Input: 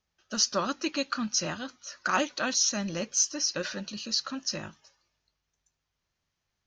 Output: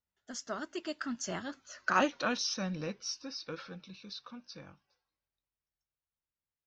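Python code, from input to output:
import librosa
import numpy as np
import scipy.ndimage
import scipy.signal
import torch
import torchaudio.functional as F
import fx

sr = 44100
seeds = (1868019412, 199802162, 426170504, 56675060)

y = fx.doppler_pass(x, sr, speed_mps=37, closest_m=22.0, pass_at_s=1.97)
y = fx.high_shelf(y, sr, hz=3900.0, db=-11.0)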